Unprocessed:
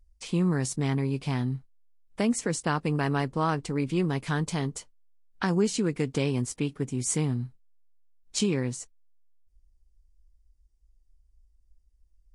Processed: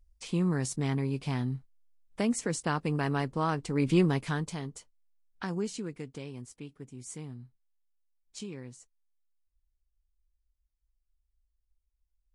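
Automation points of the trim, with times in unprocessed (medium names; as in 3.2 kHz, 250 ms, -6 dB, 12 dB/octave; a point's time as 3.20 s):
3.66 s -3 dB
3.93 s +4 dB
4.61 s -8.5 dB
5.64 s -8.5 dB
6.24 s -15 dB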